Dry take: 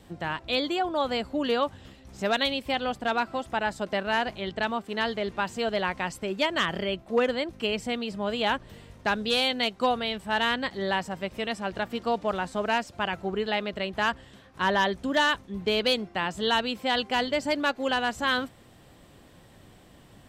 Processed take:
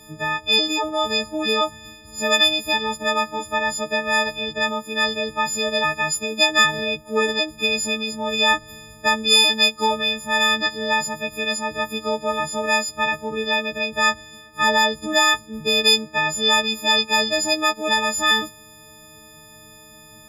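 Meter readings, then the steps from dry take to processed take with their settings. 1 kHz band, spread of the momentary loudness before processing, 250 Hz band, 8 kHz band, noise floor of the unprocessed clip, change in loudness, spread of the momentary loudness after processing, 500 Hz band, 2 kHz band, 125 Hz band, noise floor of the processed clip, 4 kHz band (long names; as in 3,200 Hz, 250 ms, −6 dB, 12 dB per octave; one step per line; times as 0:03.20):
+5.0 dB, 7 LU, +2.5 dB, +19.5 dB, −54 dBFS, +8.0 dB, 8 LU, +3.5 dB, +8.5 dB, +1.0 dB, −46 dBFS, +11.0 dB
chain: every partial snapped to a pitch grid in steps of 6 semitones
dynamic equaliser 5,900 Hz, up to +5 dB, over −38 dBFS, Q 1.5
level +2.5 dB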